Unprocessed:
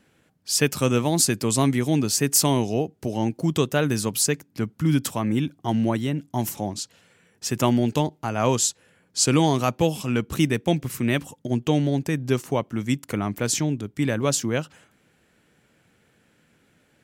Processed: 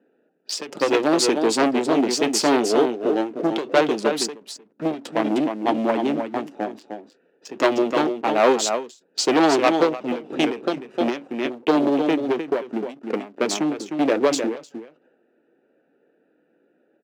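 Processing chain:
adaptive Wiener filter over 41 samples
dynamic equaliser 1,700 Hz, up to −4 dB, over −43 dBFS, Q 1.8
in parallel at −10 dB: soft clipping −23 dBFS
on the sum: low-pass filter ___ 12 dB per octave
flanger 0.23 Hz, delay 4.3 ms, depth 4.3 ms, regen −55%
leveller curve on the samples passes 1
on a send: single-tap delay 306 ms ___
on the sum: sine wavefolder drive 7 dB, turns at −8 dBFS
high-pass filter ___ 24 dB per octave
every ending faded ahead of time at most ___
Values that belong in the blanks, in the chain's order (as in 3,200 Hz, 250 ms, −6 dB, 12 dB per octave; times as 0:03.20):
3,400 Hz, −8 dB, 310 Hz, 150 dB per second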